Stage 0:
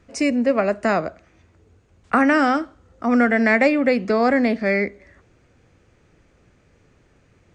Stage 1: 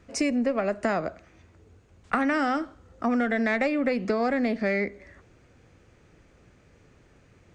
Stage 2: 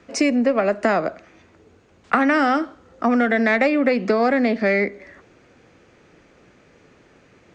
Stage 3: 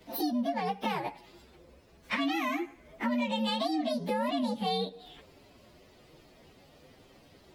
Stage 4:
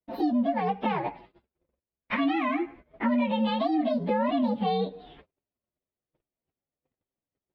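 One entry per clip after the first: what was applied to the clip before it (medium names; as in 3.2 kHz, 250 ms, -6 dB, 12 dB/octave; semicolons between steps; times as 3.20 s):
single-diode clipper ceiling -6.5 dBFS; compression 6:1, threshold -22 dBFS, peak gain reduction 9 dB
three-band isolator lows -13 dB, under 170 Hz, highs -13 dB, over 7.1 kHz; trim +7.5 dB
frequency axis rescaled in octaves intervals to 129%; compression 2:1, threshold -36 dBFS, peak gain reduction 11 dB
gate -51 dBFS, range -42 dB; distance through air 420 m; trim +6 dB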